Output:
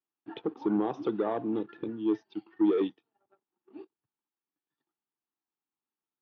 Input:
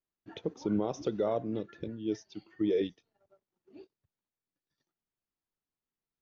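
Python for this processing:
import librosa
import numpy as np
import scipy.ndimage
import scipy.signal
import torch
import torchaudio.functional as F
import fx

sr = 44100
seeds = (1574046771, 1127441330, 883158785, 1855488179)

y = fx.leveller(x, sr, passes=1)
y = fx.cabinet(y, sr, low_hz=140.0, low_slope=24, high_hz=3300.0, hz=(170.0, 320.0, 580.0, 840.0, 1200.0, 2100.0), db=(-8, 5, -9, 7, 3, -5))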